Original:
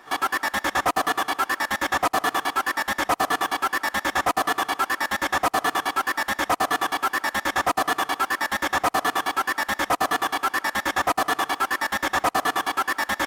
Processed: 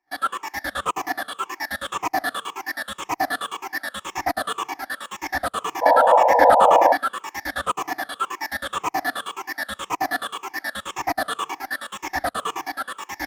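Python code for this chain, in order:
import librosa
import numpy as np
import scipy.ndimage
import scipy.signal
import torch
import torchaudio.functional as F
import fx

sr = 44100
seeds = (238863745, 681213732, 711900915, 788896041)

y = fx.spec_ripple(x, sr, per_octave=0.73, drift_hz=-1.9, depth_db=16)
y = fx.spec_paint(y, sr, seeds[0], shape='noise', start_s=5.81, length_s=1.12, low_hz=470.0, high_hz=1000.0, level_db=-14.0)
y = fx.band_widen(y, sr, depth_pct=100)
y = y * 10.0 ** (-6.0 / 20.0)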